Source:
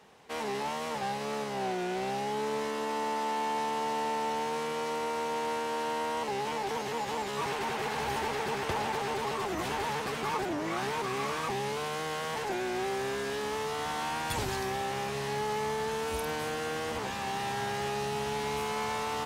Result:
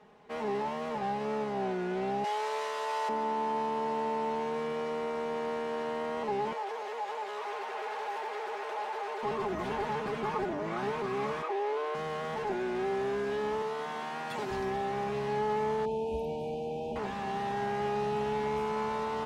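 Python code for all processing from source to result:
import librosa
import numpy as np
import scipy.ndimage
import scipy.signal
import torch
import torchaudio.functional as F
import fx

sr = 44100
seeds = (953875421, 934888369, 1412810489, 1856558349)

y = fx.chain(x, sr, fx.highpass(hz=510.0, slope=24),
    fx.high_shelf(hz=2200.0, db=11.5), at=(2.24, 3.09))
y = fx.chain(y, sr, fx.clip_hard(threshold_db=-31.5),
    fx.highpass(hz=460.0, slope=24), at=(6.53, 9.23))
y = fx.chain(y, sr, fx.steep_highpass(hz=290.0, slope=96),
    fx.high_shelf(hz=4600.0, db=-10.5),
    fx.env_flatten(amount_pct=70), at=(11.42, 11.95))
y = fx.chain(y, sr, fx.highpass(hz=130.0, slope=24),
    fx.low_shelf(hz=240.0, db=-7.5), at=(13.62, 14.51))
y = fx.chain(y, sr, fx.brickwall_bandstop(low_hz=980.0, high_hz=2300.0),
    fx.high_shelf(hz=2100.0, db=-7.5), at=(15.85, 16.96))
y = fx.lowpass(y, sr, hz=1300.0, slope=6)
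y = y + 0.5 * np.pad(y, (int(4.8 * sr / 1000.0), 0))[:len(y)]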